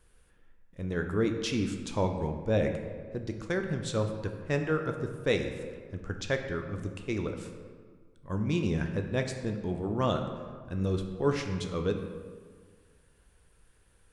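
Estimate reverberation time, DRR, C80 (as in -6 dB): 1.7 s, 4.5 dB, 8.0 dB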